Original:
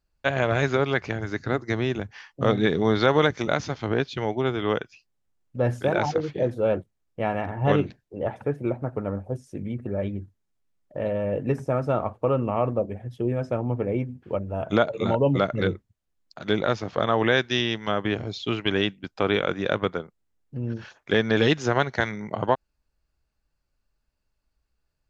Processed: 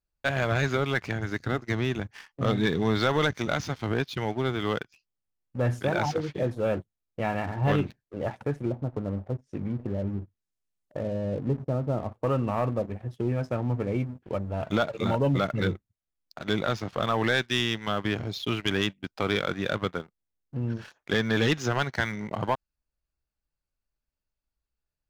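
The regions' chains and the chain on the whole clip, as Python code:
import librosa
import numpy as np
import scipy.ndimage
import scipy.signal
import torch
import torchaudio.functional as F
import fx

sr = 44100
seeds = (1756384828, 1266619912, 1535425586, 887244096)

y = fx.chain(x, sr, fx.env_lowpass_down(base_hz=630.0, full_db=-25.0),
    fx.high_shelf(hz=4200.0, db=10.0), at=(8.53, 12.12))
y = fx.dynamic_eq(y, sr, hz=480.0, q=0.92, threshold_db=-35.0, ratio=4.0, max_db=-5)
y = fx.leveller(y, sr, passes=2)
y = y * 10.0 ** (-7.0 / 20.0)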